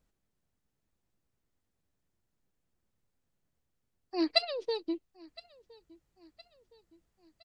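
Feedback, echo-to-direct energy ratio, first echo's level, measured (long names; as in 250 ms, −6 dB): 51%, −22.5 dB, −23.5 dB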